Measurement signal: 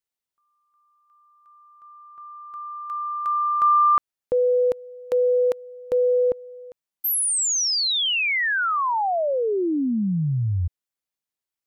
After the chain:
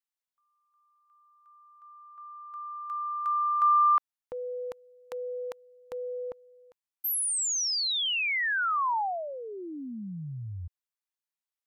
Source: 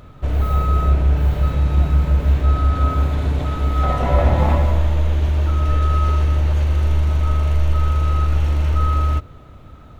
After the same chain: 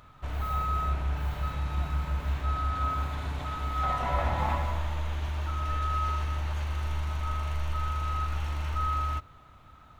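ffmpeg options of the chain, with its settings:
-af "lowshelf=f=680:t=q:w=1.5:g=-8,volume=0.473"

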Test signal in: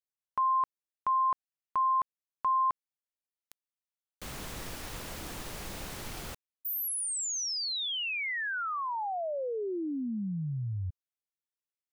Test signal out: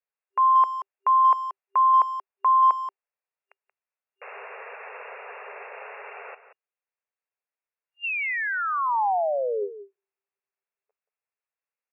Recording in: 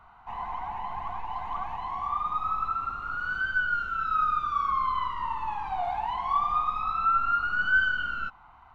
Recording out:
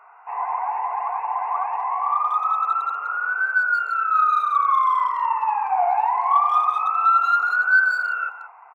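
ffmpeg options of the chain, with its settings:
-filter_complex "[0:a]afftfilt=real='re*between(b*sr/4096,390,2800)':imag='im*between(b*sr/4096,390,2800)':win_size=4096:overlap=0.75,asplit=2[s0][s1];[s1]adelay=180,highpass=300,lowpass=3400,asoftclip=type=hard:threshold=0.0596,volume=0.251[s2];[s0][s2]amix=inputs=2:normalize=0,adynamicequalizer=threshold=0.01:dfrequency=820:dqfactor=1.5:tfrequency=820:tqfactor=1.5:attack=5:release=100:ratio=0.375:range=2.5:mode=boostabove:tftype=bell,acontrast=45"

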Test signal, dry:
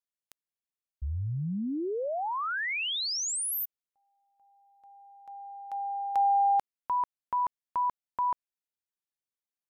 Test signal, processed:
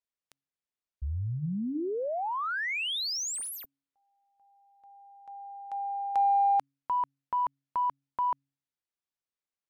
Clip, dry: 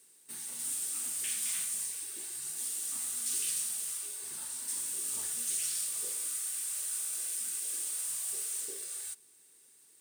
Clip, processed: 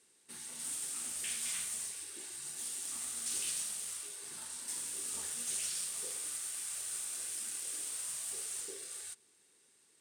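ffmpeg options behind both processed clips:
-af "adynamicsmooth=sensitivity=8:basefreq=7400,bandreject=f=138.4:t=h:w=4,bandreject=f=276.8:t=h:w=4"

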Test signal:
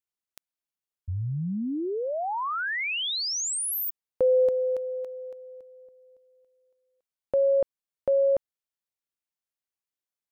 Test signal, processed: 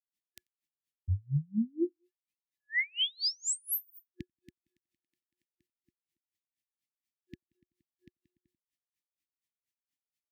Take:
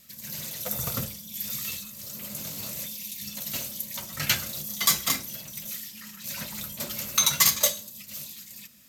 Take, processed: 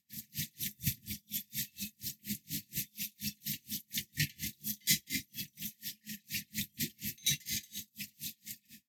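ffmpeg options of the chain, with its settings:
-filter_complex "[0:a]highpass=60,asplit=2[s0][s1];[s1]acompressor=threshold=0.0282:ratio=6:attack=0.31:release=435:knee=1:detection=peak,volume=1.06[s2];[s0][s2]amix=inputs=2:normalize=0,highshelf=f=5400:g=-4.5,aecho=1:1:90|180:0.0841|0.0278,afftfilt=real='re*(1-between(b*sr/4096,360,1700))':imag='im*(1-between(b*sr/4096,360,1700))':win_size=4096:overlap=0.75,aeval=exprs='val(0)*pow(10,-37*(0.5-0.5*cos(2*PI*4.2*n/s))/20)':c=same"

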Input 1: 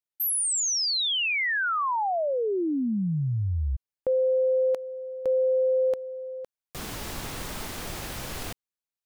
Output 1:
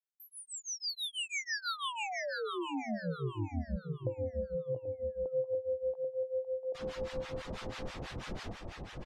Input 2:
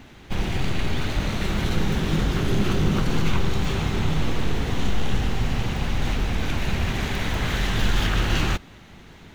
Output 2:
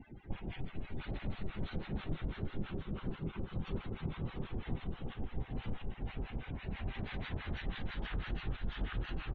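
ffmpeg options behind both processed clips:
-filter_complex "[0:a]asplit=2[s0][s1];[s1]aecho=0:1:787:0.501[s2];[s0][s2]amix=inputs=2:normalize=0,alimiter=limit=0.119:level=0:latency=1:release=366,acompressor=threshold=0.0316:ratio=6:attack=6.2:release=692:knee=1:detection=rms,afftdn=nr=31:nf=-46,lowpass=5100,asplit=2[s3][s4];[s4]aecho=0:1:695|1390|2085|2780:0.531|0.149|0.0416|0.0117[s5];[s3][s5]amix=inputs=2:normalize=0,acrossover=split=850[s6][s7];[s6]aeval=exprs='val(0)*(1-1/2+1/2*cos(2*PI*6.1*n/s))':c=same[s8];[s7]aeval=exprs='val(0)*(1-1/2-1/2*cos(2*PI*6.1*n/s))':c=same[s9];[s8][s9]amix=inputs=2:normalize=0"

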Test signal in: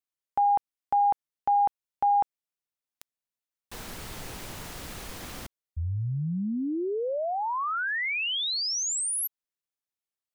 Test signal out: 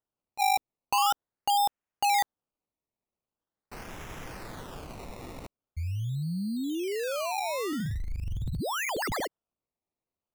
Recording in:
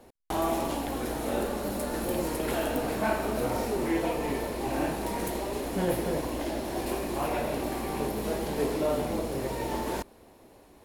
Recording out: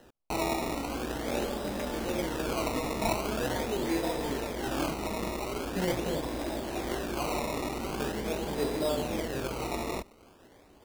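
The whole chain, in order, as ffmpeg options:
-af "acrusher=samples=19:mix=1:aa=0.000001:lfo=1:lforange=19:lforate=0.43,volume=0.794"

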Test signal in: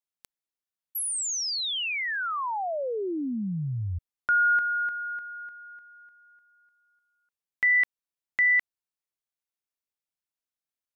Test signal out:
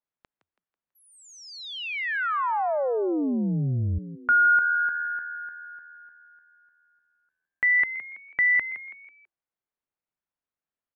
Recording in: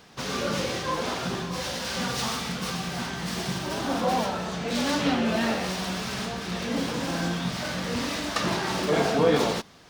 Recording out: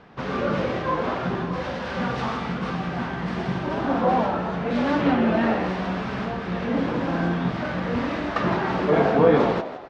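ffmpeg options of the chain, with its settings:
-filter_complex "[0:a]lowpass=1800,asplit=2[s0][s1];[s1]asplit=4[s2][s3][s4][s5];[s2]adelay=164,afreqshift=81,volume=0.224[s6];[s3]adelay=328,afreqshift=162,volume=0.0923[s7];[s4]adelay=492,afreqshift=243,volume=0.0376[s8];[s5]adelay=656,afreqshift=324,volume=0.0155[s9];[s6][s7][s8][s9]amix=inputs=4:normalize=0[s10];[s0][s10]amix=inputs=2:normalize=0,volume=1.68"

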